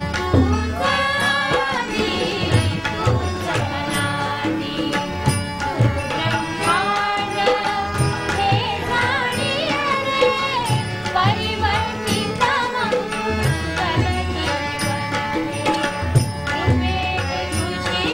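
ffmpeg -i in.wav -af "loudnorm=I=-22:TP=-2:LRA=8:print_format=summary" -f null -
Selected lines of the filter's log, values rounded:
Input Integrated:    -20.1 LUFS
Input True Peak:      -3.6 dBTP
Input LRA:             1.5 LU
Input Threshold:     -30.1 LUFS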